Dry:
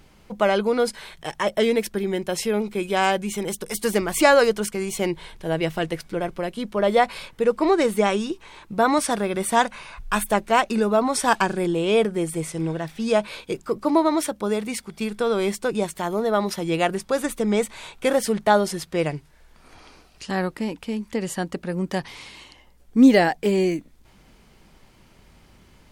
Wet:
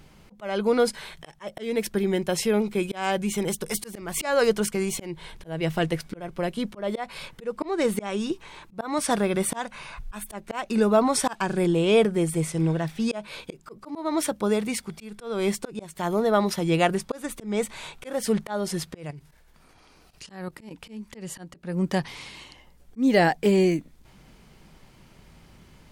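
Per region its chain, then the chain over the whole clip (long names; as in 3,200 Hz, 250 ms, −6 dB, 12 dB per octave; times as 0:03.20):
0:18.95–0:20.71: high-shelf EQ 11,000 Hz +7.5 dB + output level in coarse steps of 14 dB
whole clip: parametric band 150 Hz +5 dB 0.6 octaves; volume swells 303 ms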